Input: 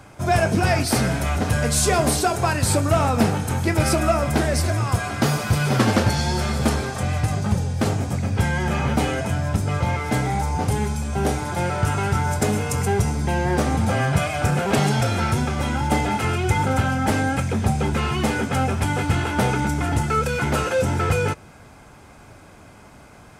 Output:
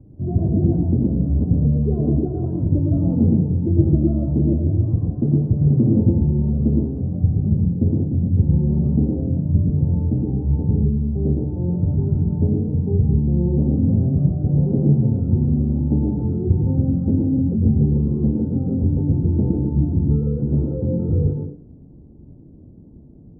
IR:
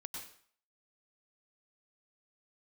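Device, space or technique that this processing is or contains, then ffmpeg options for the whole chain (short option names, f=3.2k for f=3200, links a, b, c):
next room: -filter_complex "[0:a]lowpass=f=360:w=0.5412,lowpass=f=360:w=1.3066[a];[1:a]atrim=start_sample=2205[b];[a][b]afir=irnorm=-1:irlink=0,volume=7.5dB"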